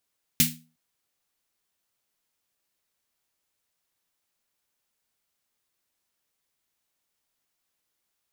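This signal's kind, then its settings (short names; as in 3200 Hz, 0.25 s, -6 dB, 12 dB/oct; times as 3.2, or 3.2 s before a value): snare drum length 0.36 s, tones 160 Hz, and 240 Hz, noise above 2000 Hz, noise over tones 7 dB, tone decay 0.38 s, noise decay 0.26 s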